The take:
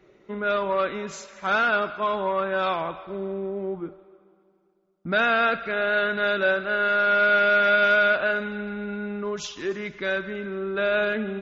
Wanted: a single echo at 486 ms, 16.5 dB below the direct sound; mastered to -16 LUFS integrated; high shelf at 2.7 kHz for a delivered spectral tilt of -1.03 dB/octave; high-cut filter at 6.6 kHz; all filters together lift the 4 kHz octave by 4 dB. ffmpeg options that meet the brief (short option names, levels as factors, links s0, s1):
-af "lowpass=6600,highshelf=f=2700:g=-4.5,equalizer=f=4000:t=o:g=8.5,aecho=1:1:486:0.15,volume=2.37"